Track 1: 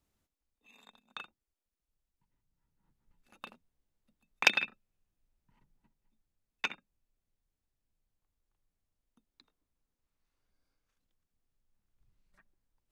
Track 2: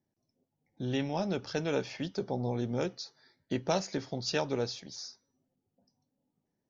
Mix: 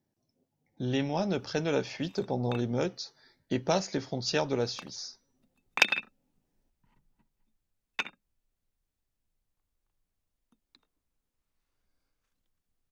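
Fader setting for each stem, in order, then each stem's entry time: +1.5, +2.5 dB; 1.35, 0.00 s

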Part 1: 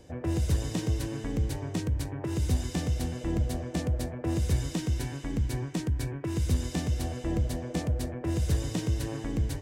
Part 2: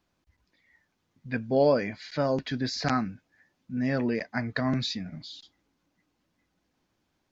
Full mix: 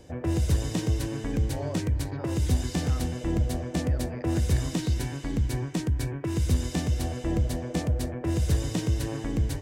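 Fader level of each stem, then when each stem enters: +2.5, -15.5 dB; 0.00, 0.00 s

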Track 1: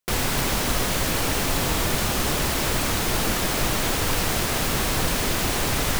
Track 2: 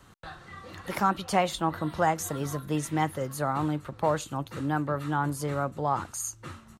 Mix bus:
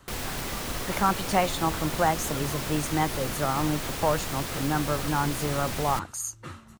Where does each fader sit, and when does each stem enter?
-9.5, +1.0 dB; 0.00, 0.00 s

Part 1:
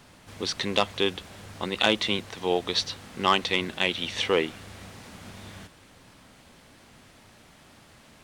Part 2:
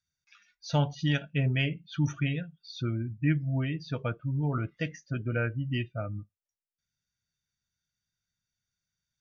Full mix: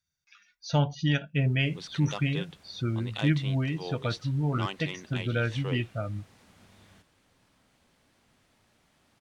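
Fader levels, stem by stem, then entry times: -13.5, +1.5 dB; 1.35, 0.00 s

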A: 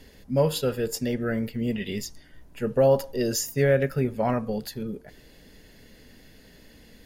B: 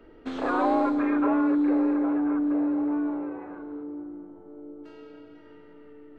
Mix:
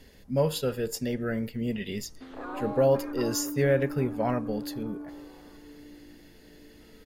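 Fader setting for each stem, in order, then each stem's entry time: -3.0, -12.5 dB; 0.00, 1.95 s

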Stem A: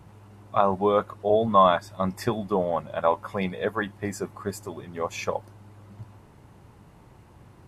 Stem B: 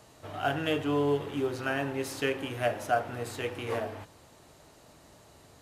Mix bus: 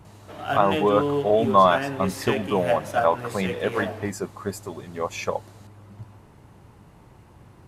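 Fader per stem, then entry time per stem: +1.5, +2.5 dB; 0.00, 0.05 s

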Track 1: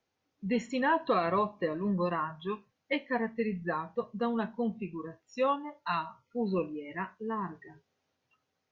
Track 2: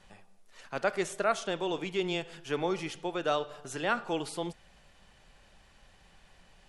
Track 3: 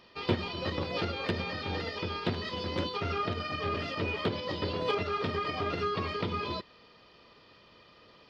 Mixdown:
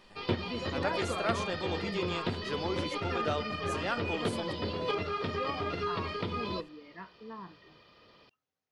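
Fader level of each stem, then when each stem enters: -10.0, -4.5, -2.0 dB; 0.00, 0.00, 0.00 s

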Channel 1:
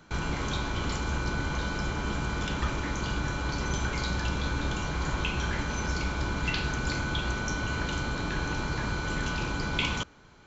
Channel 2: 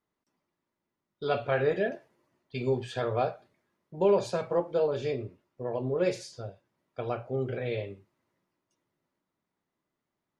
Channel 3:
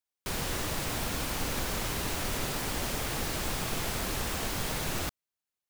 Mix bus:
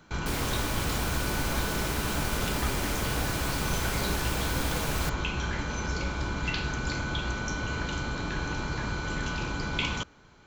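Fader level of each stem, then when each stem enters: -1.0, -18.0, 0.0 dB; 0.00, 0.00, 0.00 s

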